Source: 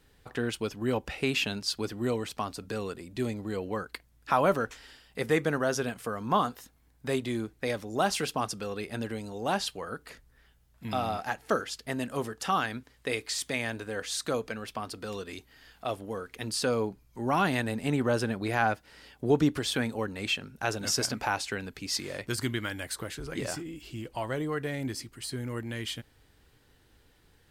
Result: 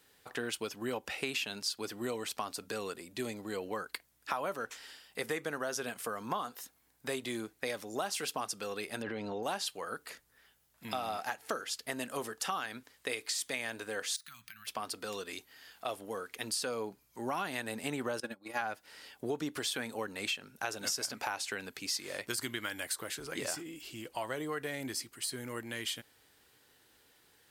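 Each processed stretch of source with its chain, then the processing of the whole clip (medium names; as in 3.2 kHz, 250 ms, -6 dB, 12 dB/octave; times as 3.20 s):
9.02–9.43 s: distance through air 290 m + level flattener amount 100%
14.16–14.67 s: Chebyshev band-stop 130–1700 Hz + compression 10:1, threshold -46 dBFS + careless resampling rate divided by 3×, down filtered, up hold
18.20–18.61 s: gate -29 dBFS, range -24 dB + comb 3.6 ms, depth 70%
whole clip: high-pass 470 Hz 6 dB/octave; treble shelf 6.7 kHz +7 dB; compression, threshold -32 dBFS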